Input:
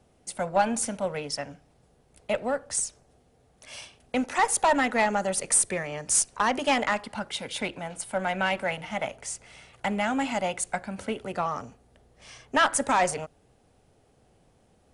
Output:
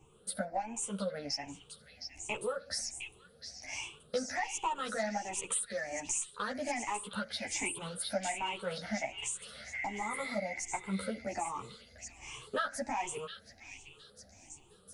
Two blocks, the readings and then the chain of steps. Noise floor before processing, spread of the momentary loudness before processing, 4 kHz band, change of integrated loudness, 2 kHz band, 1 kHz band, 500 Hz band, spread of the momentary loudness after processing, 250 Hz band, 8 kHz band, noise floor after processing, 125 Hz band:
−63 dBFS, 14 LU, −6.0 dB, −10.0 dB, −9.5 dB, −10.5 dB, −9.5 dB, 15 LU, −10.0 dB, −9.0 dB, −62 dBFS, −7.5 dB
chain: rippled gain that drifts along the octave scale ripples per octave 0.69, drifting +1.3 Hz, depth 19 dB
healed spectral selection 0:09.76–0:10.52, 1,400–3,500 Hz after
downward compressor 4 to 1, threshold −32 dBFS, peak gain reduction 18.5 dB
on a send: echo through a band-pass that steps 713 ms, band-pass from 3,400 Hz, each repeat 0.7 octaves, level −2 dB
on the sum: string-ensemble chorus

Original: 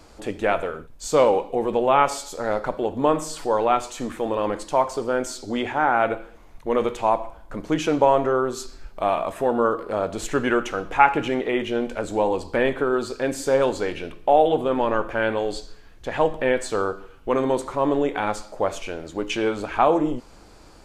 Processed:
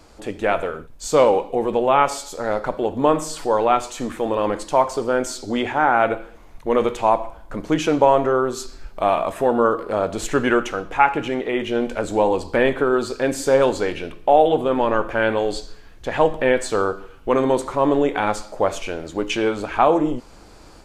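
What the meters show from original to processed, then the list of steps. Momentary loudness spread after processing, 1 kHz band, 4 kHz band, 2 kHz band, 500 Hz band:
9 LU, +2.5 dB, +3.0 dB, +2.5 dB, +3.0 dB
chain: automatic gain control gain up to 4 dB

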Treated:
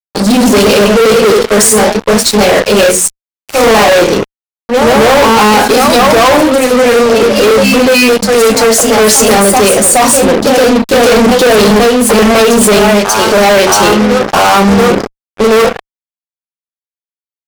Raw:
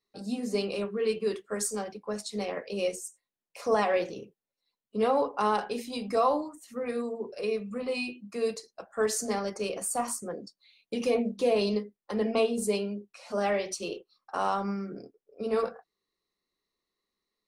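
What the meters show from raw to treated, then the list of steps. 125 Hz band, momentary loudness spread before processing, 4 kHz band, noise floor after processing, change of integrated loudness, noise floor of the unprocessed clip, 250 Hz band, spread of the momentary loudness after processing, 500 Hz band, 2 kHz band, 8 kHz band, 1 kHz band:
can't be measured, 12 LU, +28.5 dB, below −85 dBFS, +24.0 dB, below −85 dBFS, +24.5 dB, 4 LU, +23.0 dB, +28.5 dB, +27.5 dB, +23.5 dB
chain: delay with pitch and tempo change per echo 139 ms, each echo +1 semitone, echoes 2, each echo −6 dB
mains-hum notches 60/120/180/240/300 Hz
fuzz pedal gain 41 dB, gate −45 dBFS
level +9 dB

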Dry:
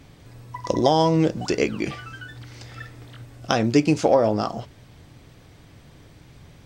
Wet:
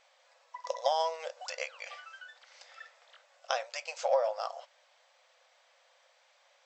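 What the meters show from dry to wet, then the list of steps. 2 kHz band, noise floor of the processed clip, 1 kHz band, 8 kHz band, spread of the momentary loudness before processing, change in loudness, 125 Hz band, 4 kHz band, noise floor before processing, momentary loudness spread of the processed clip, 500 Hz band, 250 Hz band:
−9.0 dB, −67 dBFS, −9.0 dB, −9.0 dB, 22 LU, −13.0 dB, below −40 dB, −9.0 dB, −50 dBFS, 21 LU, −11.5 dB, below −40 dB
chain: linear-phase brick-wall band-pass 490–8,100 Hz
level −9 dB

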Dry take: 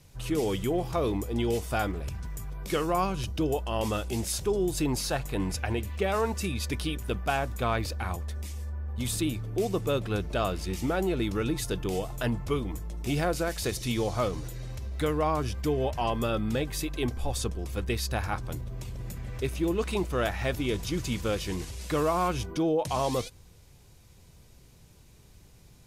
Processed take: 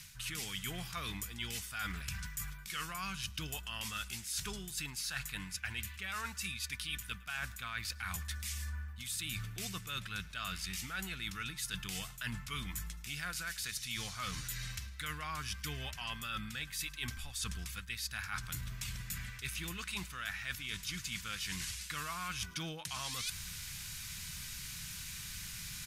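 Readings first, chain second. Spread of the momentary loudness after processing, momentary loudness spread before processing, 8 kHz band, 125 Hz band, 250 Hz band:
4 LU, 8 LU, −2.0 dB, −12.5 dB, −18.0 dB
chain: drawn EQ curve 120 Hz 0 dB, 180 Hz +3 dB, 350 Hz −14 dB, 550 Hz −13 dB, 840 Hz −4 dB, 1,500 Hz +15 dB
reversed playback
downward compressor 10 to 1, threshold −42 dBFS, peak gain reduction 28 dB
reversed playback
repeating echo 108 ms, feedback 44%, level −24 dB
level +4 dB

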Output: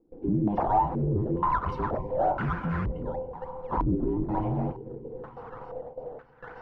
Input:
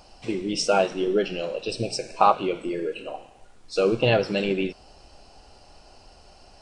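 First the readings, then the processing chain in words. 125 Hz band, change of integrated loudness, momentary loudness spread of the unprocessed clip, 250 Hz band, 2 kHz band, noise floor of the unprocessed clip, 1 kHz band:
+4.5 dB, −4.0 dB, 11 LU, −0.5 dB, −8.5 dB, −52 dBFS, −1.0 dB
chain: frequency inversion band by band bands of 500 Hz
in parallel at −3 dB: downward compressor, threshold −36 dBFS, peak gain reduction 21.5 dB
on the sum: soft clipping −18 dBFS, distortion −10 dB
low-shelf EQ 170 Hz +4 dB
noise gate with hold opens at −34 dBFS
brickwall limiter −21.5 dBFS, peak gain reduction 7 dB
on a send: echo machine with several playback heads 137 ms, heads second and third, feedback 60%, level −22 dB
on the sum: sample-and-hold swept by an LFO 11×, swing 160% 3.3 Hz
hard clipping −25.5 dBFS, distortion −16 dB
low-pass on a step sequencer 2.1 Hz 320–1,500 Hz

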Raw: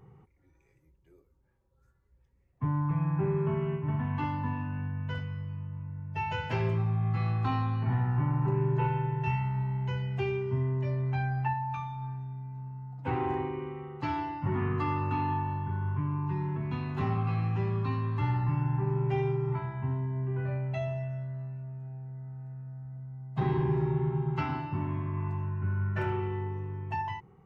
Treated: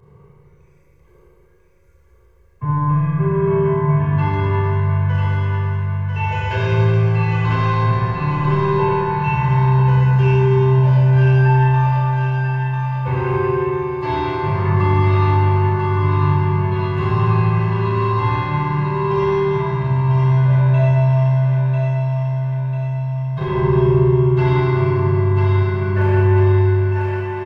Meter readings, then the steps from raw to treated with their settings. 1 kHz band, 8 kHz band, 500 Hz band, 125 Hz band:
+13.5 dB, can't be measured, +16.0 dB, +15.0 dB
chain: fade-out on the ending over 1.05 s
comb filter 1.9 ms, depth 75%
on a send: feedback echo with a high-pass in the loop 995 ms, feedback 53%, high-pass 560 Hz, level −3.5 dB
on the sum: four-comb reverb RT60 2.7 s, combs from 27 ms, DRR −6.5 dB
level +3.5 dB

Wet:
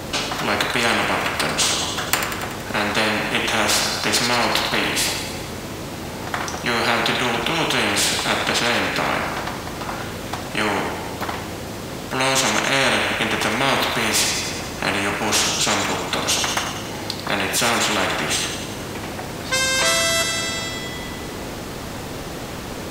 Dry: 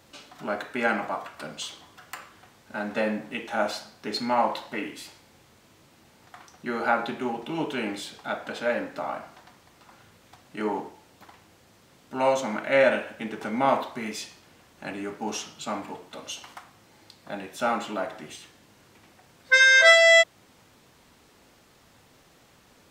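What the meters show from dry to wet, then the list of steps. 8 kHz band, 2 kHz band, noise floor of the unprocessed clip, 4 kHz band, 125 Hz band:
+16.0 dB, +3.0 dB, −58 dBFS, +11.0 dB, +16.5 dB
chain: tilt shelving filter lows +4 dB, about 720 Hz
delay with a high-pass on its return 94 ms, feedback 63%, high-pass 2,000 Hz, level −9.5 dB
every bin compressed towards the loudest bin 4 to 1
level +5 dB

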